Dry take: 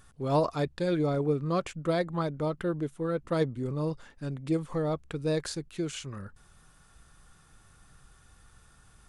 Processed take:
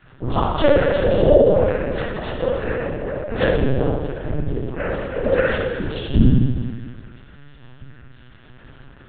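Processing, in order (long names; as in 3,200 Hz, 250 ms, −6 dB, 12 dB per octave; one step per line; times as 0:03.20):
gain on one half-wave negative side −3 dB
noise reduction from a noise print of the clip's start 8 dB
harmonic and percussive parts rebalanced harmonic +5 dB
dynamic equaliser 360 Hz, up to −6 dB, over −40 dBFS, Q 0.83
downward compressor 6 to 1, threshold −33 dBFS, peak gain reduction 9.5 dB
resonances in every octave A, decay 0.29 s
cochlear-implant simulation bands 12
spring reverb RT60 1.6 s, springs 41/55 ms, chirp 70 ms, DRR −3 dB
linear-prediction vocoder at 8 kHz pitch kept
boost into a limiter +34 dB
level −1 dB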